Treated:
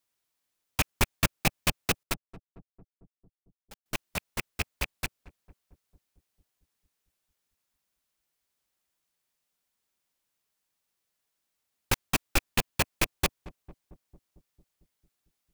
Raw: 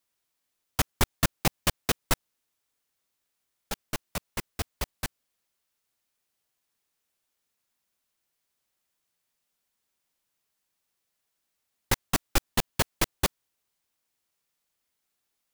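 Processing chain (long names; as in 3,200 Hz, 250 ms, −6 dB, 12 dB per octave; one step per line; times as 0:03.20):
loose part that buzzes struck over −31 dBFS, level −13 dBFS
0:02.03–0:03.86: power curve on the samples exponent 2
feedback echo with a low-pass in the loop 225 ms, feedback 68%, low-pass 870 Hz, level −18 dB
level −1.5 dB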